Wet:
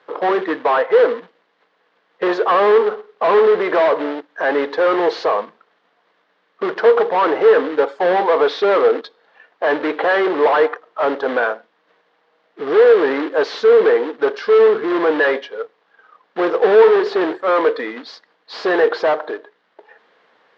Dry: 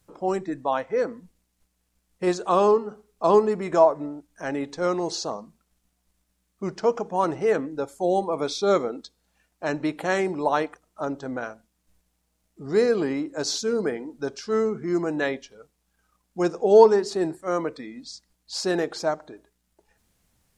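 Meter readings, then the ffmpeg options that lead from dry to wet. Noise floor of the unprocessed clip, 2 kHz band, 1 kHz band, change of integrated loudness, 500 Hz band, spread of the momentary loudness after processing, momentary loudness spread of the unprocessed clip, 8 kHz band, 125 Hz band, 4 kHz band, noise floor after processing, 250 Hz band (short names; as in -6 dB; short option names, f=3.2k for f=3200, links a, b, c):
-74 dBFS, +13.0 dB, +8.0 dB, +8.5 dB, +9.0 dB, 12 LU, 15 LU, under -10 dB, n/a, +5.0 dB, -63 dBFS, +3.5 dB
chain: -filter_complex "[0:a]acrusher=bits=3:mode=log:mix=0:aa=0.000001,asplit=2[a][b];[b]highpass=f=720:p=1,volume=34dB,asoftclip=type=tanh:threshold=-2dB[c];[a][c]amix=inputs=2:normalize=0,lowpass=f=2k:p=1,volume=-6dB,highpass=370,equalizer=f=460:t=q:w=4:g=9,equalizer=f=1.1k:t=q:w=4:g=3,equalizer=f=1.7k:t=q:w=4:g=4,equalizer=f=2.5k:t=q:w=4:g=-5,lowpass=f=3.7k:w=0.5412,lowpass=f=3.7k:w=1.3066,volume=-6dB"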